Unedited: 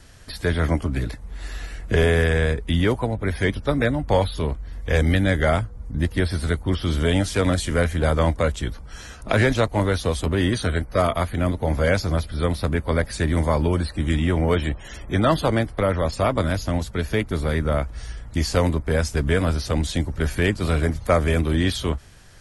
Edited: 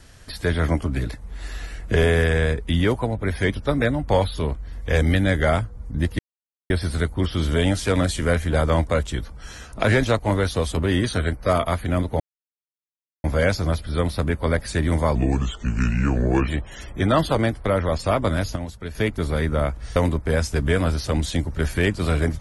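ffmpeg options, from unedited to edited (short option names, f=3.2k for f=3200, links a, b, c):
-filter_complex "[0:a]asplit=8[a][b][c][d][e][f][g][h];[a]atrim=end=6.19,asetpts=PTS-STARTPTS,afade=t=out:st=6.186:d=0.004:c=hsin,apad=pad_dur=0.51[i];[b]atrim=start=6.19:end=11.69,asetpts=PTS-STARTPTS,afade=t=in:d=0.004:c=hsin,afade=t=out:st=5.496:d=0.004:c=hsin,apad=pad_dur=1.04[j];[c]atrim=start=11.69:end=13.604,asetpts=PTS-STARTPTS,afade=t=in:d=0.004:c=hsin[k];[d]atrim=start=13.6:end=14.61,asetpts=PTS-STARTPTS,asetrate=33516,aresample=44100[l];[e]atrim=start=14.606:end=16.692[m];[f]atrim=start=16.688:end=17.082,asetpts=PTS-STARTPTS,volume=-7.5dB[n];[g]atrim=start=17.078:end=18.092[o];[h]atrim=start=18.568[p];[i][j][k]concat=n=3:v=0:a=1[q];[q][l]acrossfade=d=0.004:c1=hsin:c2=hsin[r];[r][m]acrossfade=d=0.004:c1=hsin:c2=hsin[s];[s][n]acrossfade=d=0.004:c1=hsin:c2=hsin[t];[t][o]acrossfade=d=0.004:c1=hsin:c2=hsin[u];[u][p]acrossfade=d=0.004:c1=hsin:c2=hsin"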